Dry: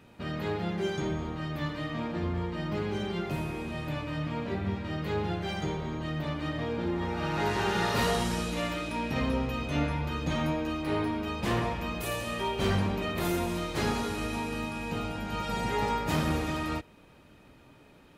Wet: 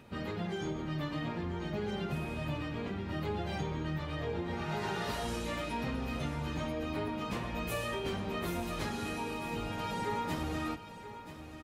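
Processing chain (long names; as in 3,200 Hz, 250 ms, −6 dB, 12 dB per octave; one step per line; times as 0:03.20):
downward compressor 6 to 1, threshold −32 dBFS, peak gain reduction 8.5 dB
time stretch by phase vocoder 0.64×
on a send: single-tap delay 981 ms −12.5 dB
on the sum: level +2.5 dB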